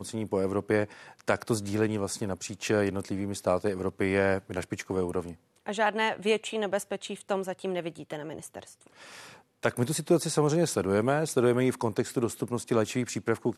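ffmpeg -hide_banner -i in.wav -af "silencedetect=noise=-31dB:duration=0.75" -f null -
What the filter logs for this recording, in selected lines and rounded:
silence_start: 8.59
silence_end: 9.63 | silence_duration: 1.04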